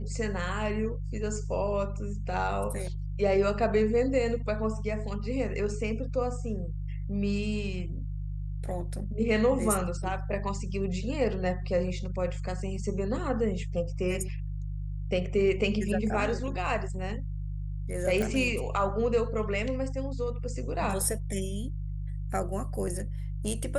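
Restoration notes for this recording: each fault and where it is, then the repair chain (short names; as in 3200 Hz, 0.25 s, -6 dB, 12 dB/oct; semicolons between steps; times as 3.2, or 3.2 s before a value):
hum 50 Hz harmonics 3 -34 dBFS
18.22 pop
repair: de-click; de-hum 50 Hz, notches 3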